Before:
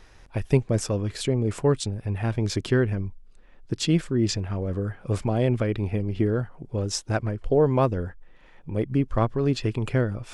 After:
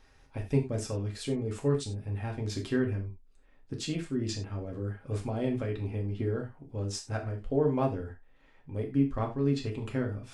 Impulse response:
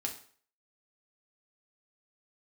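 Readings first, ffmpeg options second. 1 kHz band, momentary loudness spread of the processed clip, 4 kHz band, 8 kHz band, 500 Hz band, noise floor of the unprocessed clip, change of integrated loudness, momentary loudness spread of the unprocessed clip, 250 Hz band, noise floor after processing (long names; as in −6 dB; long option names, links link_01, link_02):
−7.5 dB, 9 LU, −8.5 dB, −8.5 dB, −7.0 dB, −52 dBFS, −7.0 dB, 8 LU, −5.5 dB, −60 dBFS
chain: -filter_complex "[1:a]atrim=start_sample=2205,afade=type=out:start_time=0.15:duration=0.01,atrim=end_sample=7056[link_01];[0:a][link_01]afir=irnorm=-1:irlink=0,volume=-9dB"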